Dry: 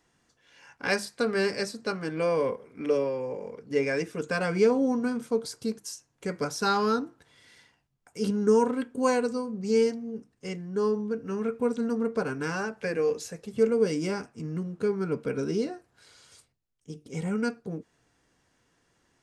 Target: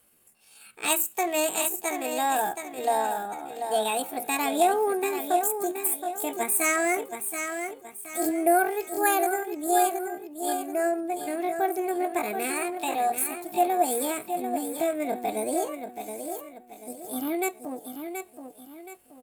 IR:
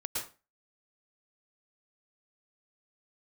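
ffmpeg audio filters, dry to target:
-af "aecho=1:1:727|1454|2181|2908:0.422|0.156|0.0577|0.0214,aexciter=amount=4.9:drive=6.4:freq=5.1k,asetrate=70004,aresample=44100,atempo=0.629961"

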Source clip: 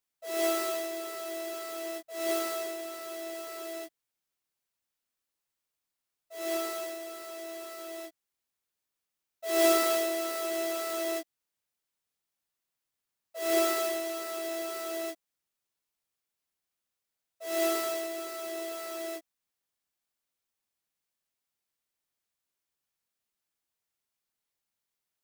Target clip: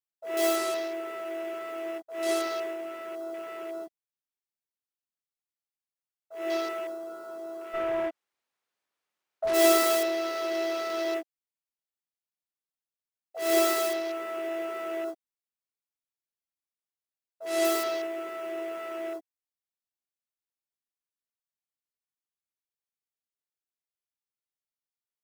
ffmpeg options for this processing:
-filter_complex "[0:a]asplit=3[a][b][c];[a]afade=t=out:st=7.73:d=0.02[d];[b]asplit=2[e][f];[f]highpass=f=720:p=1,volume=30dB,asoftclip=type=tanh:threshold=-22dB[g];[e][g]amix=inputs=2:normalize=0,lowpass=f=1.4k:p=1,volume=-6dB,afade=t=in:st=7.73:d=0.02,afade=t=out:st=9.53:d=0.02[h];[c]afade=t=in:st=9.53:d=0.02[i];[d][h][i]amix=inputs=3:normalize=0,afwtdn=0.00562,volume=3dB"

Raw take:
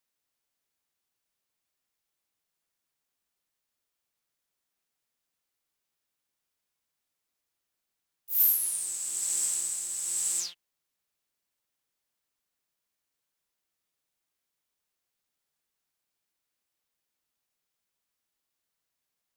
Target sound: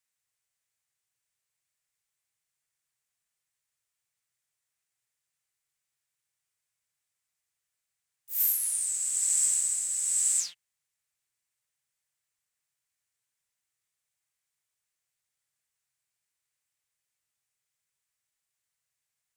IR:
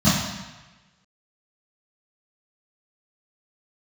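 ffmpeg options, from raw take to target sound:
-af "equalizer=f=125:t=o:w=1:g=11,equalizer=f=250:t=o:w=1:g=-11,equalizer=f=2k:t=o:w=1:g=7,equalizer=f=8k:t=o:w=1:g=10,volume=-6dB"

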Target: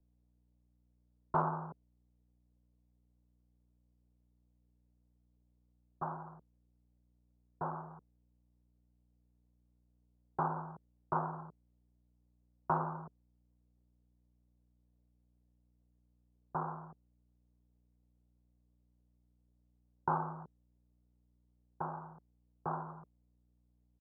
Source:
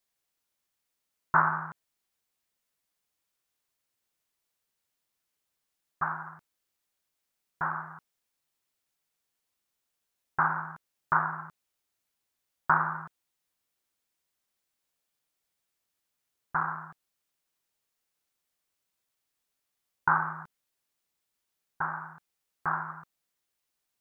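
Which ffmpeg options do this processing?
-filter_complex "[0:a]firequalizer=gain_entry='entry(110,0);entry(430,10);entry(1900,-29)':delay=0.05:min_phase=1,aeval=exprs='val(0)+0.000355*(sin(2*PI*60*n/s)+sin(2*PI*2*60*n/s)/2+sin(2*PI*3*60*n/s)/3+sin(2*PI*4*60*n/s)/4+sin(2*PI*5*60*n/s)/5)':c=same,acrossover=split=150|490[a][b][c];[b]volume=34.5dB,asoftclip=hard,volume=-34.5dB[d];[a][d][c]amix=inputs=3:normalize=0,volume=-2.5dB"

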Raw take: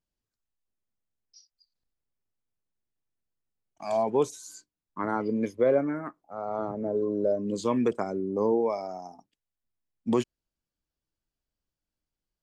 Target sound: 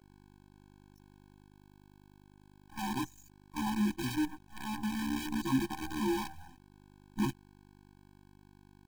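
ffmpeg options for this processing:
-af "afftfilt=real='re':imag='-im':win_size=2048:overlap=0.75,afftdn=nr=32:nf=-47,lowshelf=f=170:g=6.5,bandreject=f=1.5k:w=7.1,aeval=exprs='val(0)+0.00158*(sin(2*PI*50*n/s)+sin(2*PI*2*50*n/s)/2+sin(2*PI*3*50*n/s)/3+sin(2*PI*4*50*n/s)/4+sin(2*PI*5*50*n/s)/5)':c=same,acrusher=bits=6:dc=4:mix=0:aa=0.000001,atempo=1.4,afftfilt=real='re*eq(mod(floor(b*sr/1024/370),2),0)':imag='im*eq(mod(floor(b*sr/1024/370),2),0)':win_size=1024:overlap=0.75"

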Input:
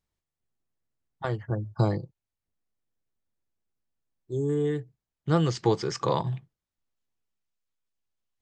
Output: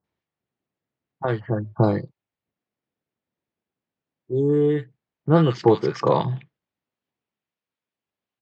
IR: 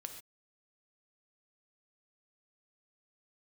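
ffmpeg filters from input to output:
-filter_complex "[0:a]highpass=140,lowpass=2.7k,acrossover=split=1300[a][b];[b]adelay=40[c];[a][c]amix=inputs=2:normalize=0,volume=8dB"

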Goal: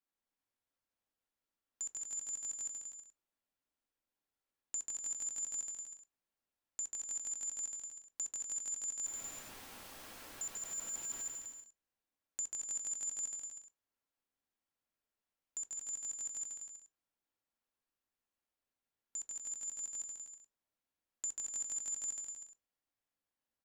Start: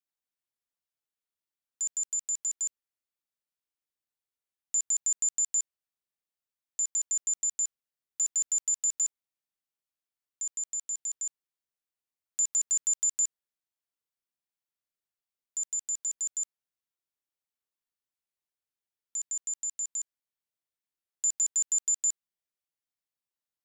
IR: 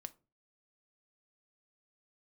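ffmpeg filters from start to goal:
-filter_complex "[0:a]asettb=1/sr,asplit=3[a][b][c];[a]atrim=end=9.034[d];[b]atrim=start=9.03:end=11.27,asetpts=PTS-STARTPTS,afade=t=in:d=0.004:c=qsin,afade=t=out:st=2.236:d=0.004:c=qsin,aeval=exprs='val(0)+0.5*0.00891*sgn(val(0))':c=same[e];[c]atrim=start=11.266[f];[d][e]acrossfade=d=0.004:c1=hsin:c2=qsin[g];[g][f]acrossfade=d=0.004:c1=qsin:c2=hsin,acompressor=threshold=-33dB:ratio=2.5,highshelf=f=2.6k:g=-11,aecho=1:1:140|245|323.8|382.8|427.1:0.631|0.398|0.251|0.158|0.1[h];[1:a]atrim=start_sample=2205,asetrate=66150,aresample=44100[i];[h][i]afir=irnorm=-1:irlink=0,volume=12.5dB"

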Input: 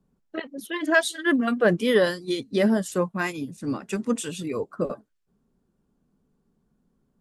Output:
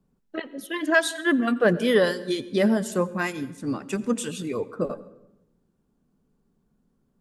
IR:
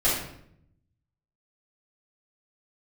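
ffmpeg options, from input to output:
-filter_complex "[0:a]asplit=2[a][b];[1:a]atrim=start_sample=2205,asetrate=33516,aresample=44100,adelay=76[c];[b][c]afir=irnorm=-1:irlink=0,volume=-32.5dB[d];[a][d]amix=inputs=2:normalize=0"

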